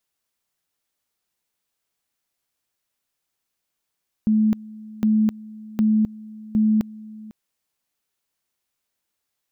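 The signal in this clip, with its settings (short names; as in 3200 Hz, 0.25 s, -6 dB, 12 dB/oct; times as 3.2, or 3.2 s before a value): two-level tone 216 Hz -14.5 dBFS, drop 21 dB, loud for 0.26 s, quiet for 0.50 s, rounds 4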